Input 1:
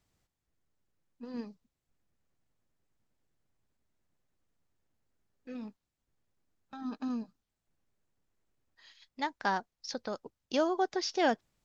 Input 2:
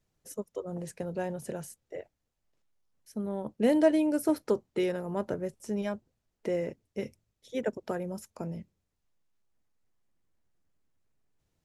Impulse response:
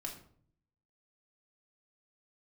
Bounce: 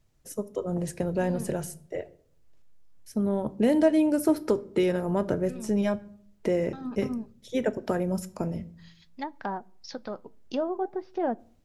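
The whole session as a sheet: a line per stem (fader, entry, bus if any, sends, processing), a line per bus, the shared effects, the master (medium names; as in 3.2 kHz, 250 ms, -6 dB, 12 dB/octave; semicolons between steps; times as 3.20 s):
+1.0 dB, 0.00 s, send -18.5 dB, low-pass that closes with the level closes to 880 Hz, closed at -30 dBFS; flange 0.53 Hz, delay 1.2 ms, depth 9.3 ms, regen -73%
+1.5 dB, 0.00 s, send -8 dB, compression 2:1, threshold -30 dBFS, peak gain reduction 7.5 dB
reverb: on, RT60 0.55 s, pre-delay 3 ms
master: bass shelf 140 Hz +8 dB; level rider gain up to 3 dB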